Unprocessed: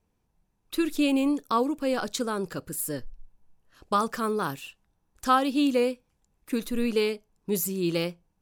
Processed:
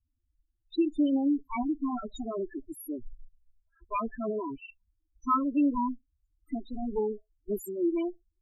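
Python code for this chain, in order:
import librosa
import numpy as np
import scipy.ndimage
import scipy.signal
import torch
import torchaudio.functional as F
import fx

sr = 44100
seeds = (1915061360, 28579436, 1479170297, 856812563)

y = fx.lower_of_two(x, sr, delay_ms=3.0)
y = fx.spec_topn(y, sr, count=4)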